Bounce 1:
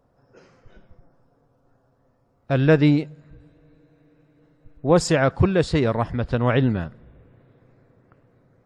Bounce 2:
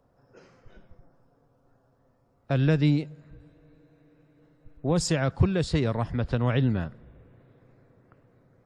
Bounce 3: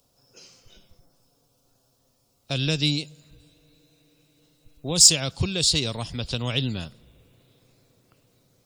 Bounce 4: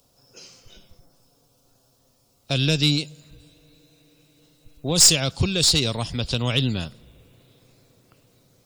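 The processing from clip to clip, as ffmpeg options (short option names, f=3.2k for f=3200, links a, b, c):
-filter_complex "[0:a]acrossover=split=210|3000[a][b][c];[b]acompressor=threshold=-26dB:ratio=3[d];[a][d][c]amix=inputs=3:normalize=0,volume=-2dB"
-af "aexciter=amount=6.6:drive=9:freq=2.7k,volume=-4dB"
-af "aeval=exprs='(tanh(4.47*val(0)+0.2)-tanh(0.2))/4.47':c=same,volume=4.5dB"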